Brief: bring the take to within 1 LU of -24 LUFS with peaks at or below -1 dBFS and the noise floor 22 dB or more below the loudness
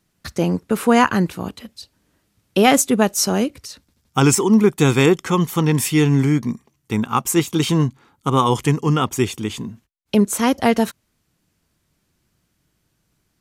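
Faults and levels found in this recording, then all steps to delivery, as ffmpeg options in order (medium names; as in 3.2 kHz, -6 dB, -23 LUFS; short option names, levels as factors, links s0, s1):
loudness -18.0 LUFS; peak level -1.5 dBFS; loudness target -24.0 LUFS
-> -af "volume=0.501"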